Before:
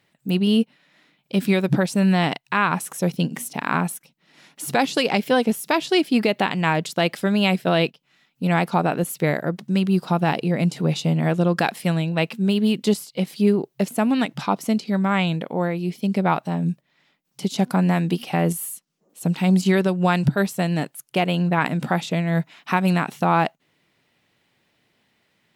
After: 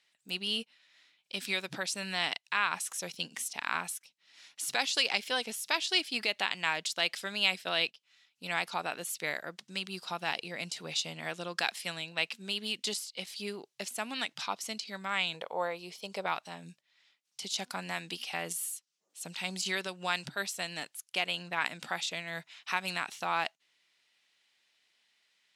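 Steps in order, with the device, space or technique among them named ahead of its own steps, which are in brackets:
0:15.34–0:16.26: octave-band graphic EQ 125/250/500/1,000/2,000 Hz +4/−7/+9/+8/−3 dB
piezo pickup straight into a mixer (low-pass filter 5,700 Hz 12 dB per octave; first difference)
level +5 dB

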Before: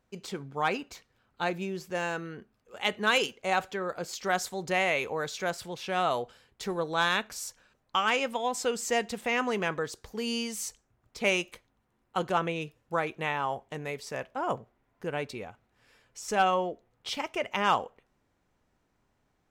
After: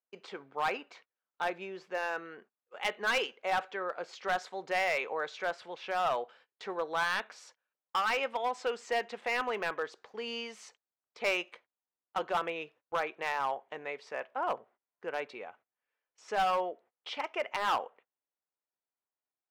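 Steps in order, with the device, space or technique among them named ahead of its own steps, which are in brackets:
walkie-talkie (band-pass filter 500–2,700 Hz; hard clipping −24 dBFS, distortion −10 dB; noise gate −58 dBFS, range −23 dB)

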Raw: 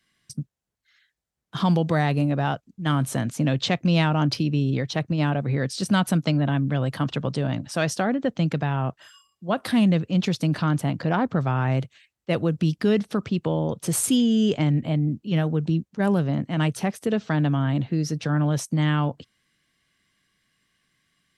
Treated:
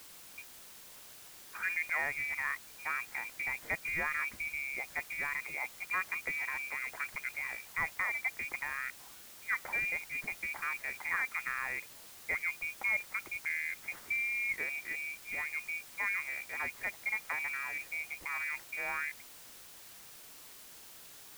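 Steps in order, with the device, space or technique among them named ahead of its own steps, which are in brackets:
scrambled radio voice (band-pass filter 330–2,600 Hz; voice inversion scrambler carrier 2,600 Hz; white noise bed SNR 14 dB)
level −8.5 dB

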